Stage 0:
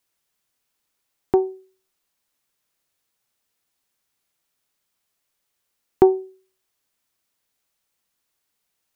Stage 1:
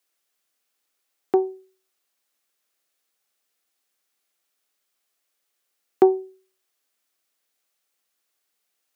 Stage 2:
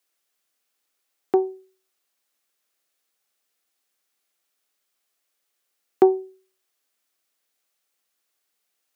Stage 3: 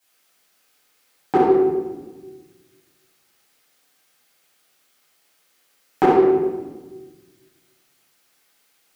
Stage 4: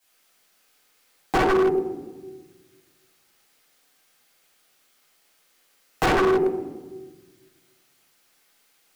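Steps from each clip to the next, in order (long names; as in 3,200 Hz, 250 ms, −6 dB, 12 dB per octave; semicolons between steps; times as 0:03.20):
high-pass filter 300 Hz 12 dB per octave; notch filter 950 Hz, Q 8.6
no processing that can be heard
downward compressor, threshold −22 dBFS, peak gain reduction 11.5 dB; rectangular room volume 890 cubic metres, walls mixed, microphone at 8.3 metres; level +1.5 dB
stylus tracing distortion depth 0.23 ms; wave folding −14.5 dBFS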